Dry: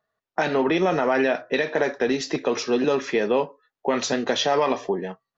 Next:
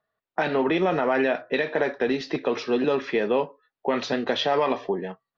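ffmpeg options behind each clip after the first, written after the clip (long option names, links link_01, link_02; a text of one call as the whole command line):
ffmpeg -i in.wav -af "lowpass=frequency=4400:width=0.5412,lowpass=frequency=4400:width=1.3066,volume=-1.5dB" out.wav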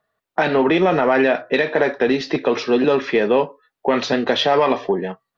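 ffmpeg -i in.wav -af "acontrast=79" out.wav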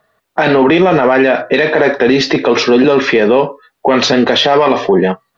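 ffmpeg -i in.wav -af "alimiter=level_in=15dB:limit=-1dB:release=50:level=0:latency=1,volume=-1dB" out.wav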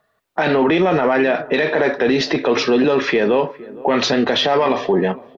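ffmpeg -i in.wav -filter_complex "[0:a]asplit=2[link_01][link_02];[link_02]adelay=463,lowpass=frequency=920:poles=1,volume=-18.5dB,asplit=2[link_03][link_04];[link_04]adelay=463,lowpass=frequency=920:poles=1,volume=0.54,asplit=2[link_05][link_06];[link_06]adelay=463,lowpass=frequency=920:poles=1,volume=0.54,asplit=2[link_07][link_08];[link_08]adelay=463,lowpass=frequency=920:poles=1,volume=0.54,asplit=2[link_09][link_10];[link_10]adelay=463,lowpass=frequency=920:poles=1,volume=0.54[link_11];[link_01][link_03][link_05][link_07][link_09][link_11]amix=inputs=6:normalize=0,volume=-6dB" out.wav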